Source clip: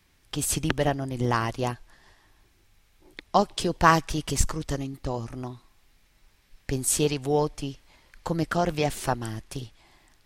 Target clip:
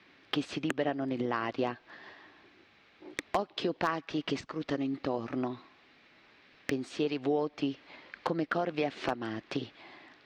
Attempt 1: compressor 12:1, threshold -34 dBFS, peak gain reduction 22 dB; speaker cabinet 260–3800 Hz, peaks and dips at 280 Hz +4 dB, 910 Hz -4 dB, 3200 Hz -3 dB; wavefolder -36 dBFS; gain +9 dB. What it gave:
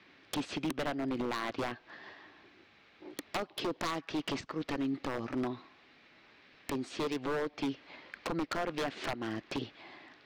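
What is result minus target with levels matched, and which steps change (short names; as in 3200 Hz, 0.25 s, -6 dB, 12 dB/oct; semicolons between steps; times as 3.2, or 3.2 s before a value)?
wavefolder: distortion +19 dB
change: wavefolder -26 dBFS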